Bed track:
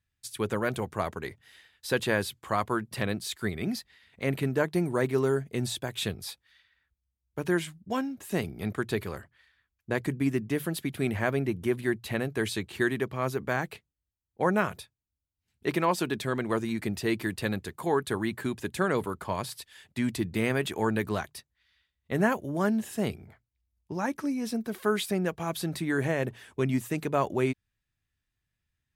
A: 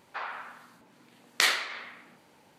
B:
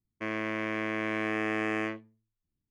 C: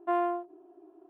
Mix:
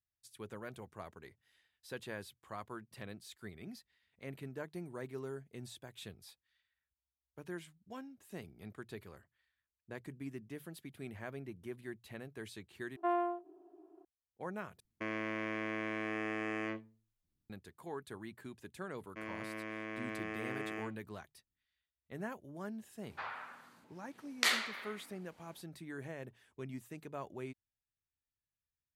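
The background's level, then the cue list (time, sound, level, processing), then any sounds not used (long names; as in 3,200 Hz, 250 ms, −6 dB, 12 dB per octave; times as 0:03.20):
bed track −17.5 dB
0:12.96: overwrite with C −5 dB
0:14.80: overwrite with B −0.5 dB + brickwall limiter −25 dBFS
0:18.95: mix in B −11 dB
0:23.03: mix in A −6.5 dB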